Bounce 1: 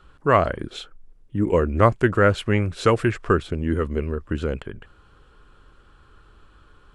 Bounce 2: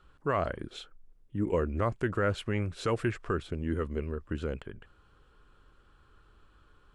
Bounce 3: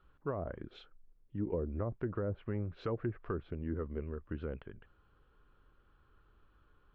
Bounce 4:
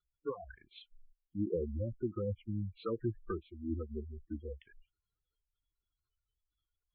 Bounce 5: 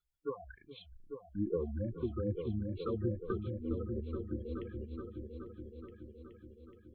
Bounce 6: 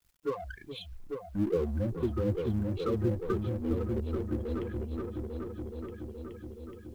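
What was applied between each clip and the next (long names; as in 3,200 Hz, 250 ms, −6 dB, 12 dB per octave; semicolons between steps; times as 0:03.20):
brickwall limiter −10 dBFS, peak gain reduction 7 dB; level −8.5 dB
treble cut that deepens with the level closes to 590 Hz, closed at −24 dBFS; high-frequency loss of the air 240 metres; level −5.5 dB
noise reduction from a noise print of the clip's start 24 dB; gate on every frequency bin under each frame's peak −15 dB strong; level +2 dB
dynamic equaliser 640 Hz, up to −5 dB, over −58 dBFS, Q 5; echo whose low-pass opens from repeat to repeat 423 ms, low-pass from 200 Hz, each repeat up 2 octaves, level −3 dB
mu-law and A-law mismatch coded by mu; level +4 dB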